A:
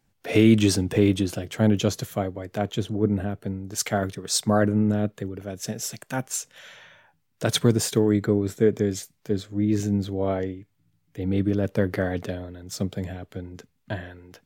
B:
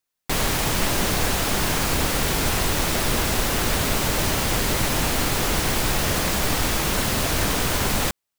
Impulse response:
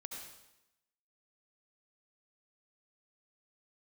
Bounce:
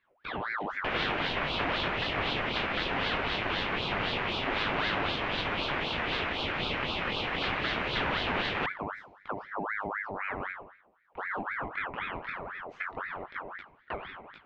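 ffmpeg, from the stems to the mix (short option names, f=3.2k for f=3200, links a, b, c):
-filter_complex "[0:a]flanger=delay=19:depth=5.9:speed=0.21,alimiter=limit=-18dB:level=0:latency=1,acompressor=threshold=-37dB:ratio=3,volume=2dB,asplit=2[a][b];[b]volume=-3.5dB[c];[1:a]highpass=930,adelay=550,volume=2dB,asplit=2[d][e];[e]volume=-23.5dB[f];[2:a]atrim=start_sample=2205[g];[c][f]amix=inputs=2:normalize=0[h];[h][g]afir=irnorm=-1:irlink=0[i];[a][d][i]amix=inputs=3:normalize=0,lowpass=f=2.1k:w=0.5412,lowpass=f=2.1k:w=1.3066,aeval=exprs='val(0)*sin(2*PI*1200*n/s+1200*0.6/3.9*sin(2*PI*3.9*n/s))':c=same"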